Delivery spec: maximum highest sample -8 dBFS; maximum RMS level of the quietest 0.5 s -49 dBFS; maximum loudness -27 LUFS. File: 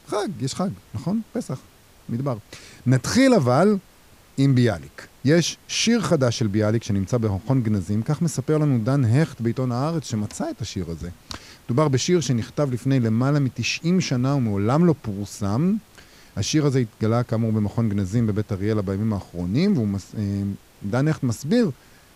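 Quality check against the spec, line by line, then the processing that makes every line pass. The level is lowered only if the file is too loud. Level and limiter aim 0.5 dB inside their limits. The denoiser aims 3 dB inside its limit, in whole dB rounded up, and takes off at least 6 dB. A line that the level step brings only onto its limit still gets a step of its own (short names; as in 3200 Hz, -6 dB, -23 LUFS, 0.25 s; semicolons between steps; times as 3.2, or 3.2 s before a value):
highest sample -5.5 dBFS: fail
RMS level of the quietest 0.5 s -51 dBFS: OK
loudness -22.5 LUFS: fail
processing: gain -5 dB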